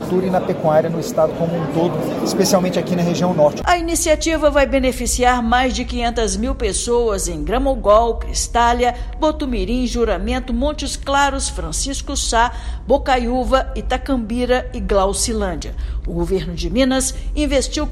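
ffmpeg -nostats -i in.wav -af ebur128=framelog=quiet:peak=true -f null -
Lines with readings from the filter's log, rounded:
Integrated loudness:
  I:         -18.0 LUFS
  Threshold: -28.0 LUFS
Loudness range:
  LRA:         3.2 LU
  Threshold: -37.9 LUFS
  LRA low:   -19.5 LUFS
  LRA high:  -16.3 LUFS
True peak:
  Peak:       -2.7 dBFS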